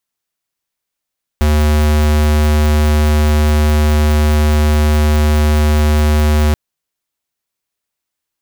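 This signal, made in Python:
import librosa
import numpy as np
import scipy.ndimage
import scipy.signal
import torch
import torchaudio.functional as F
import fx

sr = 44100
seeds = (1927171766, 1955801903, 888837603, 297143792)

y = fx.tone(sr, length_s=5.13, wave='square', hz=75.4, level_db=-11.0)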